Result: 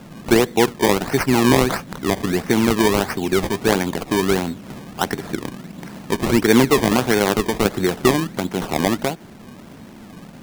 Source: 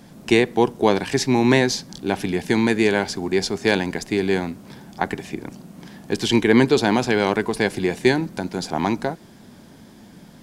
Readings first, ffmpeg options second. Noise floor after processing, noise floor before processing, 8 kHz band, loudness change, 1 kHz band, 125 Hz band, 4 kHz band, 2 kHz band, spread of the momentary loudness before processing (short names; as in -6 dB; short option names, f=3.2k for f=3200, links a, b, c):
-41 dBFS, -46 dBFS, +5.0 dB, +1.5 dB, +3.0 dB, +2.5 dB, +1.5 dB, +0.5 dB, 13 LU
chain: -filter_complex "[0:a]asplit=2[a][b];[b]acompressor=threshold=-27dB:ratio=6,volume=-1dB[c];[a][c]amix=inputs=2:normalize=0,acrusher=samples=22:mix=1:aa=0.000001:lfo=1:lforange=22:lforate=1.5"